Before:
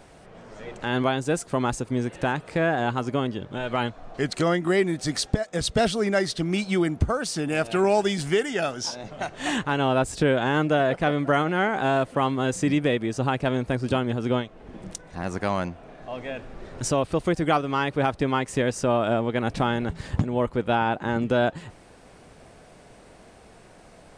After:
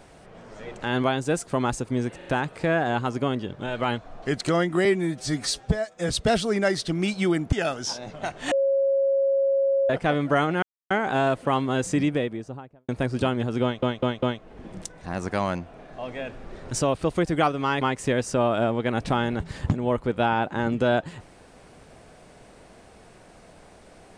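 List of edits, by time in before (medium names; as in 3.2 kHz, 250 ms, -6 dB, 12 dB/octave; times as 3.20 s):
2.17 s: stutter 0.04 s, 3 plays
4.77–5.60 s: stretch 1.5×
7.03–8.50 s: delete
9.49–10.87 s: bleep 547 Hz -18.5 dBFS
11.60 s: insert silence 0.28 s
12.57–13.58 s: studio fade out
14.32 s: stutter 0.20 s, 4 plays
17.91–18.31 s: delete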